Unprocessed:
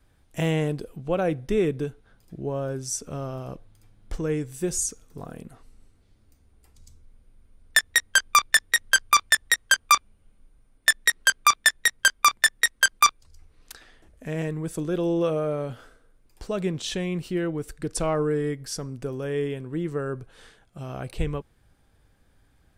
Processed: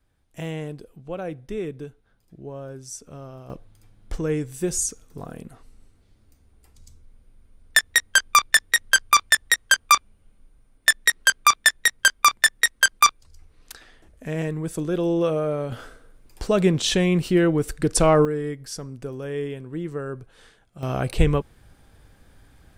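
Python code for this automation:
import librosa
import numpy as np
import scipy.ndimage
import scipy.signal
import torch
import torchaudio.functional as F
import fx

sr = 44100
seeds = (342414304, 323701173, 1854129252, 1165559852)

y = fx.gain(x, sr, db=fx.steps((0.0, -7.0), (3.5, 2.0), (15.72, 8.5), (18.25, -1.5), (20.83, 9.0)))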